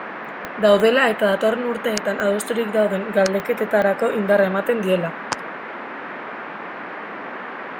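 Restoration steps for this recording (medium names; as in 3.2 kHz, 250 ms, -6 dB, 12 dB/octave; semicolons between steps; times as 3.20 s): de-click; noise print and reduce 30 dB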